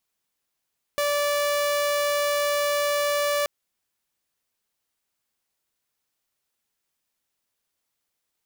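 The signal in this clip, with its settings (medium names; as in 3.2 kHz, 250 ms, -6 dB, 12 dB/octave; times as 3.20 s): tone saw 581 Hz -19 dBFS 2.48 s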